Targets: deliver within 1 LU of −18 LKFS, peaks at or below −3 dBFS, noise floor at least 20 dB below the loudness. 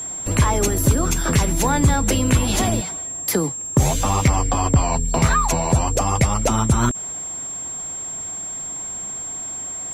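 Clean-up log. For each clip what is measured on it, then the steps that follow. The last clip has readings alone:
crackle rate 40 per second; interfering tone 7,500 Hz; level of the tone −27 dBFS; integrated loudness −20.5 LKFS; sample peak −6.5 dBFS; target loudness −18.0 LKFS
→ click removal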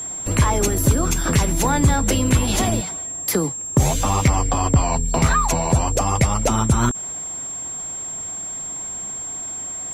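crackle rate 0.40 per second; interfering tone 7,500 Hz; level of the tone −27 dBFS
→ notch filter 7,500 Hz, Q 30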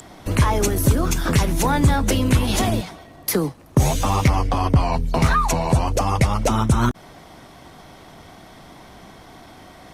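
interfering tone none found; integrated loudness −20.0 LKFS; sample peak −6.5 dBFS; target loudness −18.0 LKFS
→ level +2 dB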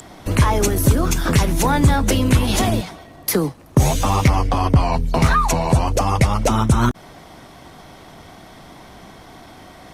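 integrated loudness −18.0 LKFS; sample peak −4.5 dBFS; background noise floor −43 dBFS

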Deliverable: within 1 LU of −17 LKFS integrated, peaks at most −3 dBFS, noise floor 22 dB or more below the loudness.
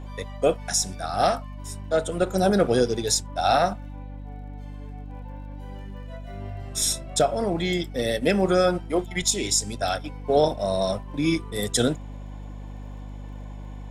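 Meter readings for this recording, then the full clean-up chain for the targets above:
crackle rate 38 per second; mains hum 50 Hz; hum harmonics up to 250 Hz; level of the hum −35 dBFS; integrated loudness −24.0 LKFS; sample peak −8.5 dBFS; target loudness −17.0 LKFS
→ click removal
mains-hum notches 50/100/150/200/250 Hz
level +7 dB
brickwall limiter −3 dBFS

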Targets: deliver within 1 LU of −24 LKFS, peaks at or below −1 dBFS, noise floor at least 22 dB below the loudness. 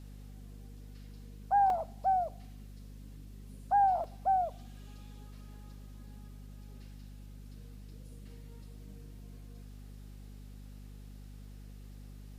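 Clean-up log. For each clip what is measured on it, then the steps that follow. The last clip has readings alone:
number of dropouts 2; longest dropout 1.8 ms; mains hum 50 Hz; hum harmonics up to 250 Hz; level of the hum −46 dBFS; integrated loudness −30.5 LKFS; sample peak −19.5 dBFS; target loudness −24.0 LKFS
→ repair the gap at 0:01.70/0:04.04, 1.8 ms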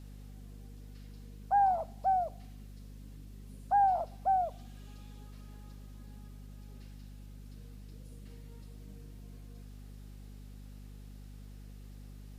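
number of dropouts 0; mains hum 50 Hz; hum harmonics up to 250 Hz; level of the hum −46 dBFS
→ hum removal 50 Hz, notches 5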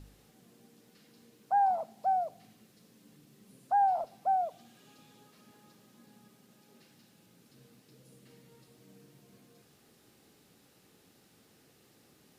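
mains hum none found; integrated loudness −30.5 LKFS; sample peak −20.0 dBFS; target loudness −24.0 LKFS
→ level +6.5 dB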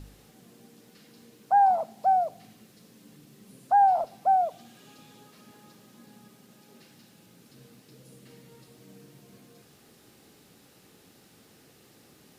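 integrated loudness −24.0 LKFS; sample peak −13.5 dBFS; background noise floor −58 dBFS

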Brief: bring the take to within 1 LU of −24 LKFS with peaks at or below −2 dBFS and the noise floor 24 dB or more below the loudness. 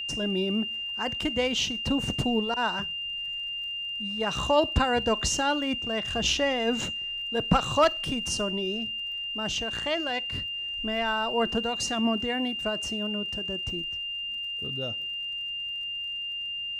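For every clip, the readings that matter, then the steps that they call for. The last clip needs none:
crackle rate 38 per second; interfering tone 2,800 Hz; level of the tone −31 dBFS; integrated loudness −27.5 LKFS; sample peak −10.0 dBFS; target loudness −24.0 LKFS
→ click removal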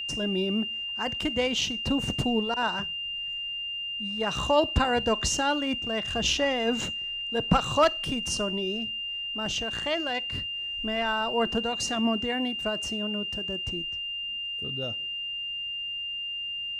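crackle rate 0 per second; interfering tone 2,800 Hz; level of the tone −31 dBFS
→ notch filter 2,800 Hz, Q 30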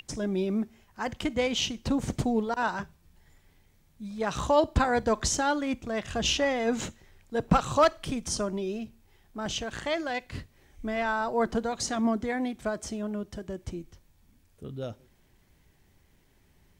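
interfering tone none found; integrated loudness −29.0 LKFS; sample peak −10.5 dBFS; target loudness −24.0 LKFS
→ level +5 dB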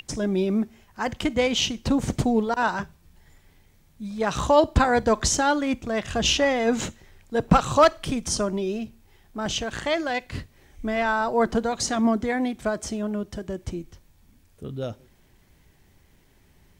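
integrated loudness −24.0 LKFS; sample peak −5.5 dBFS; background noise floor −59 dBFS

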